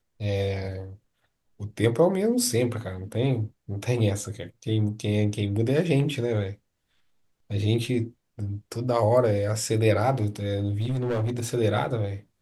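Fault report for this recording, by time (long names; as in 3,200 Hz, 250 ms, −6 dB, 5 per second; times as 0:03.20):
0:10.79–0:11.47: clipping −23 dBFS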